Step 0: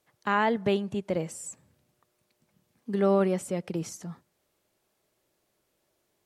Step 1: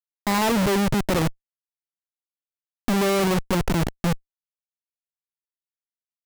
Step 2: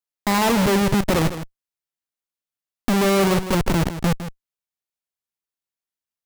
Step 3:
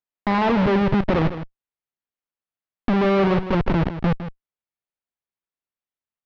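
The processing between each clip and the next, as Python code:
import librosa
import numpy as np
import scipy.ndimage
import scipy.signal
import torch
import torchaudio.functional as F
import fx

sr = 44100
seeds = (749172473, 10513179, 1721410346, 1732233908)

y1 = fx.tilt_shelf(x, sr, db=6.0, hz=1300.0)
y1 = fx.schmitt(y1, sr, flips_db=-34.0)
y1 = y1 * librosa.db_to_amplitude(7.0)
y2 = y1 + 10.0 ** (-11.5 / 20.0) * np.pad(y1, (int(158 * sr / 1000.0), 0))[:len(y1)]
y2 = y2 * librosa.db_to_amplitude(2.5)
y3 = scipy.ndimage.gaussian_filter1d(y2, 2.6, mode='constant')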